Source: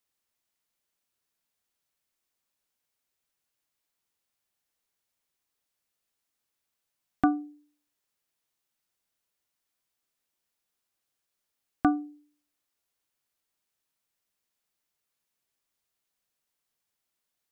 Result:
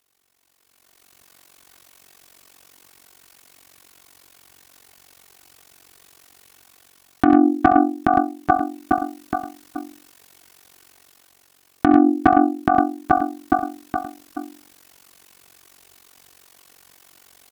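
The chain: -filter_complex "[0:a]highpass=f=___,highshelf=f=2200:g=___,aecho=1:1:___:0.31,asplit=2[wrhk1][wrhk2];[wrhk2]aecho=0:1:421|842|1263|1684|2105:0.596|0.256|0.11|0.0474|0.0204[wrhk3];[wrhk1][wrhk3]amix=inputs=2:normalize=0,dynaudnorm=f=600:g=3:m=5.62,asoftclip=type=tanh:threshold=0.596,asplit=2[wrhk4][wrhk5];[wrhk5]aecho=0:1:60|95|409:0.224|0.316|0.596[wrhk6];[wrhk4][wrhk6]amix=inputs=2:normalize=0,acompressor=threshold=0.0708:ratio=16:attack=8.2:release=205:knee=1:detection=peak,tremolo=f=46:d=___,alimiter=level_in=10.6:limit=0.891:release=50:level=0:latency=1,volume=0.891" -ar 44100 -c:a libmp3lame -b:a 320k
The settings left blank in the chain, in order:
48, -3, 2.7, 0.974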